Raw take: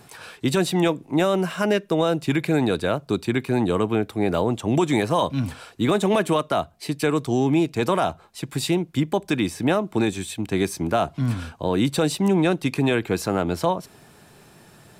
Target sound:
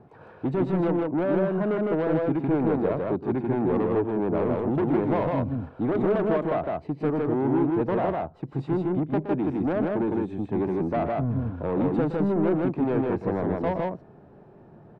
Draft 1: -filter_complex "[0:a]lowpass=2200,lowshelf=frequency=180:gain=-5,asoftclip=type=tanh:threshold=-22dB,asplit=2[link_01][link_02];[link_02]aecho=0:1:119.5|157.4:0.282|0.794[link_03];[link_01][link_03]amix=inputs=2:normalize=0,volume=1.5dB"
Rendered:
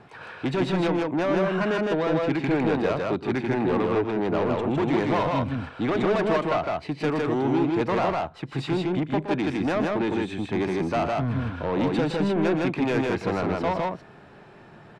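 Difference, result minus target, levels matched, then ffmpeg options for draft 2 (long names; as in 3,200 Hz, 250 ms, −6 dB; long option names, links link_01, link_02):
2,000 Hz band +7.5 dB
-filter_complex "[0:a]lowpass=670,lowshelf=frequency=180:gain=-5,asoftclip=type=tanh:threshold=-22dB,asplit=2[link_01][link_02];[link_02]aecho=0:1:119.5|157.4:0.282|0.794[link_03];[link_01][link_03]amix=inputs=2:normalize=0,volume=1.5dB"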